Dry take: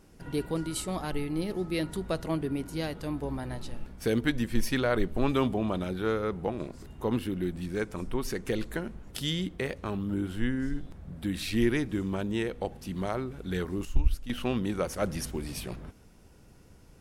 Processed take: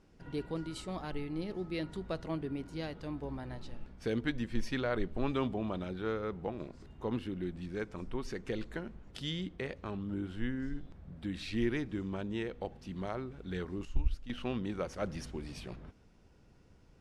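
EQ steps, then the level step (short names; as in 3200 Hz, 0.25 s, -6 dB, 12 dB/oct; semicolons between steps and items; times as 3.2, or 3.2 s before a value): LPF 5400 Hz 12 dB/oct; -6.5 dB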